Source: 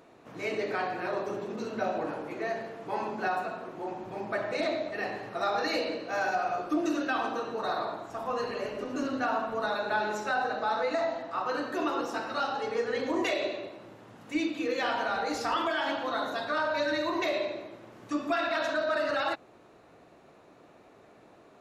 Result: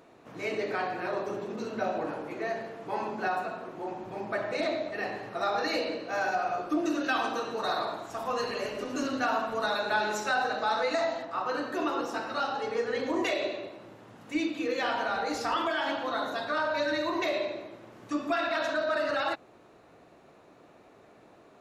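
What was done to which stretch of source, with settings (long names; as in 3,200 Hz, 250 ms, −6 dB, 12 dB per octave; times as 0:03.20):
0:07.04–0:11.25: high-shelf EQ 2,500 Hz +8 dB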